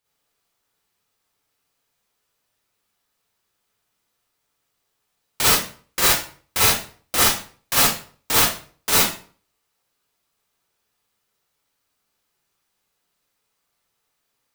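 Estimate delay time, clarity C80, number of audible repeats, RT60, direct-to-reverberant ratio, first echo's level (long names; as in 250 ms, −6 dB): no echo audible, 7.0 dB, no echo audible, 0.45 s, −7.5 dB, no echo audible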